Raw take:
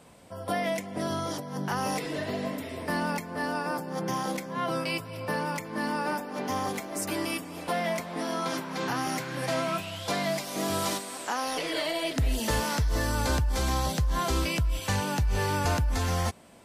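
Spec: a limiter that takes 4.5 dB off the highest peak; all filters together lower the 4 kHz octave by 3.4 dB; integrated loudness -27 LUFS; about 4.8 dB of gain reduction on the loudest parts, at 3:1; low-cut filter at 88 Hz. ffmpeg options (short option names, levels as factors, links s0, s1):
-af "highpass=88,equalizer=f=4000:t=o:g=-4.5,acompressor=threshold=0.0282:ratio=3,volume=2.66,alimiter=limit=0.15:level=0:latency=1"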